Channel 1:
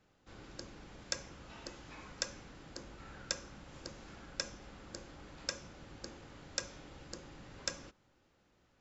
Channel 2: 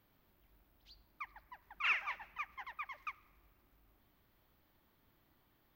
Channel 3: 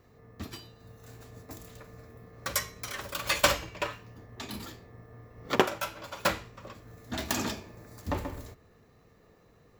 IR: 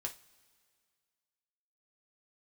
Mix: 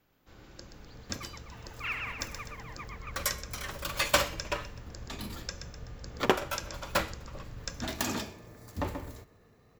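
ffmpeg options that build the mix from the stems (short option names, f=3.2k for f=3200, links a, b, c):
-filter_complex "[0:a]asubboost=boost=5:cutoff=140,volume=-1.5dB,asplit=2[a][b];[b]volume=-8dB[c];[1:a]volume=-2dB,asplit=2[d][e];[e]volume=-4dB[f];[2:a]adelay=700,volume=-1.5dB,asplit=2[g][h];[h]volume=-23.5dB[i];[c][f][i]amix=inputs=3:normalize=0,aecho=0:1:126|252|378|504|630|756:1|0.46|0.212|0.0973|0.0448|0.0206[j];[a][d][g][j]amix=inputs=4:normalize=0"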